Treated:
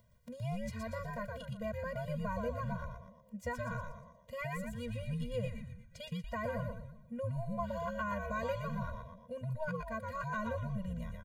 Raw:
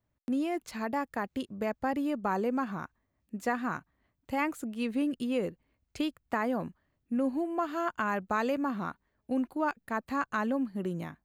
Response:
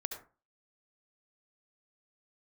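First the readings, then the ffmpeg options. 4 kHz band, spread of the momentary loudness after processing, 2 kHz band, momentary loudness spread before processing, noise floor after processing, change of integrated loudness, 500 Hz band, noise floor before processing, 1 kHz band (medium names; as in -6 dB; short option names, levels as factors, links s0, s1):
-6.0 dB, 11 LU, -6.5 dB, 7 LU, -61 dBFS, -7.0 dB, -5.5 dB, -80 dBFS, -8.0 dB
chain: -filter_complex "[0:a]acompressor=mode=upward:threshold=0.00447:ratio=2.5,asplit=7[s0][s1][s2][s3][s4][s5][s6];[s1]adelay=119,afreqshift=-130,volume=0.708[s7];[s2]adelay=238,afreqshift=-260,volume=0.339[s8];[s3]adelay=357,afreqshift=-390,volume=0.162[s9];[s4]adelay=476,afreqshift=-520,volume=0.0785[s10];[s5]adelay=595,afreqshift=-650,volume=0.0376[s11];[s6]adelay=714,afreqshift=-780,volume=0.018[s12];[s0][s7][s8][s9][s10][s11][s12]amix=inputs=7:normalize=0,afftfilt=real='re*eq(mod(floor(b*sr/1024/230),2),0)':imag='im*eq(mod(floor(b*sr/1024/230),2),0)':win_size=1024:overlap=0.75,volume=0.531"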